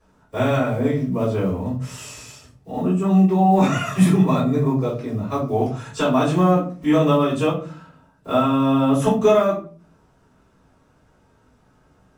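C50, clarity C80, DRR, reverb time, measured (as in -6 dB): 7.5 dB, 12.5 dB, -11.0 dB, 0.40 s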